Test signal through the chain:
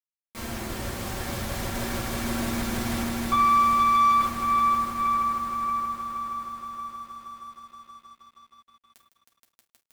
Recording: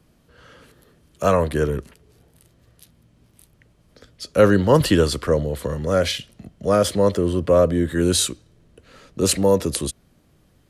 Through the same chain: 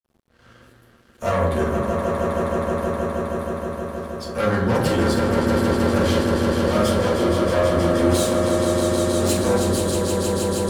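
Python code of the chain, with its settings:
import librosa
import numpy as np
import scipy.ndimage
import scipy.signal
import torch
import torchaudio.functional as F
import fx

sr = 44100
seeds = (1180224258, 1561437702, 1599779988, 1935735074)

p1 = x + fx.echo_swell(x, sr, ms=158, loudest=5, wet_db=-7.5, dry=0)
p2 = fx.tube_stage(p1, sr, drive_db=18.0, bias=0.4)
p3 = fx.rev_fdn(p2, sr, rt60_s=0.88, lf_ratio=1.3, hf_ratio=0.4, size_ms=26.0, drr_db=-5.0)
p4 = np.sign(p3) * np.maximum(np.abs(p3) - 10.0 ** (-48.0 / 20.0), 0.0)
y = p4 * librosa.db_to_amplitude(-4.5)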